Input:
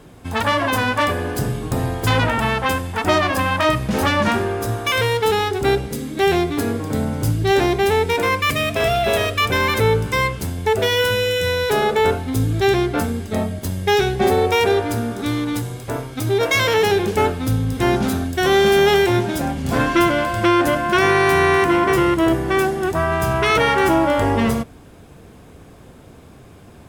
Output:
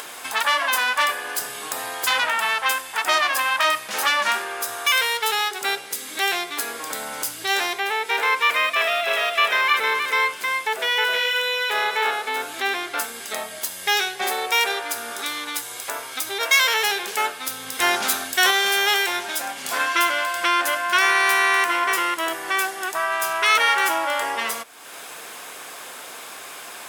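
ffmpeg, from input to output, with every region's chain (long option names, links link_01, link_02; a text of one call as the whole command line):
ffmpeg -i in.wav -filter_complex "[0:a]asettb=1/sr,asplit=3[link_01][link_02][link_03];[link_01]atrim=end=7.794[link_04];[link_02]atrim=start=7.79:end=12.89,asetpts=PTS-STARTPTS,afade=type=in:duration=0.004:curve=qsin,afade=type=out:start_time=5.096:duration=0.004:curve=qsin,highpass=170,acrossover=split=3400[link_05][link_06];[link_06]acompressor=threshold=-42dB:ratio=4:attack=1:release=60[link_07];[link_05][link_07]amix=inputs=2:normalize=0,aecho=1:1:313:0.668,atrim=end_sample=224910[link_08];[link_03]atrim=start=12.886[link_09];[link_04][link_08]acrossfade=duration=0.004:curve1=hsin:curve2=qsin[link_10];[link_10][link_09]acrossfade=duration=0.004:curve1=qsin:curve2=hsin,asettb=1/sr,asplit=3[link_11][link_12][link_13];[link_11]atrim=end=17.794[link_14];[link_12]atrim=start=17.79:end=18.51,asetpts=PTS-STARTPTS,afade=type=in:duration=0.004:curve=qsin,afade=type=out:start_time=0.716:duration=0.004:curve=qsin,lowshelf=frequency=82:gain=8.5,acontrast=33[link_15];[link_13]atrim=start=18.506[link_16];[link_14][link_15]acrossfade=duration=0.004:curve1=hsin:curve2=qsin[link_17];[link_17][link_16]acrossfade=duration=0.004:curve1=qsin:curve2=hsin,highpass=1100,highshelf=frequency=6100:gain=5,acompressor=mode=upward:threshold=-25dB:ratio=2.5,volume=1.5dB" out.wav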